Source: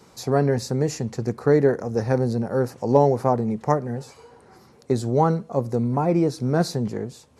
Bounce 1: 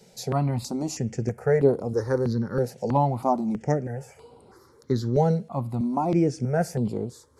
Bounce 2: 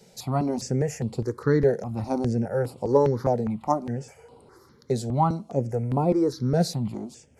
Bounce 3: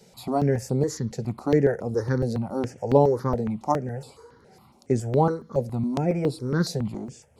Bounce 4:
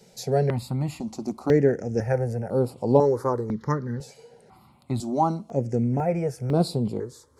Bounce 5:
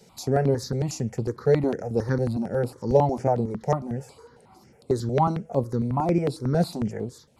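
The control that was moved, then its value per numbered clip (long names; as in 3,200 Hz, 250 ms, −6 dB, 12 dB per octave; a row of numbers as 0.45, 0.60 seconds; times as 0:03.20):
step-sequenced phaser, speed: 3.1, 4.9, 7.2, 2, 11 Hertz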